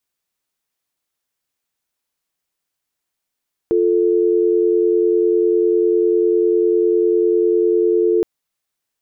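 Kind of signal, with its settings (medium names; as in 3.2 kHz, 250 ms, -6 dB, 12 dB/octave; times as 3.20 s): call progress tone dial tone, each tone -15 dBFS 4.52 s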